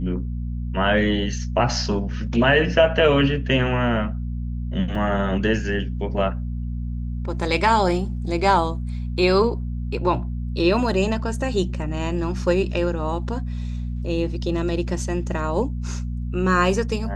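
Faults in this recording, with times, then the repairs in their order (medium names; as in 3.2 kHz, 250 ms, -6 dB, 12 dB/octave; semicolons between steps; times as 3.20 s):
hum 60 Hz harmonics 4 -27 dBFS
4.95 s: dropout 2.5 ms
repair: de-hum 60 Hz, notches 4; interpolate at 4.95 s, 2.5 ms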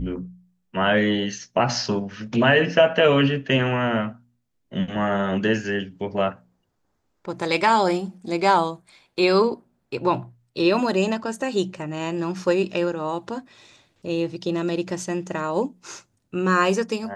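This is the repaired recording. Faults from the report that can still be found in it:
nothing left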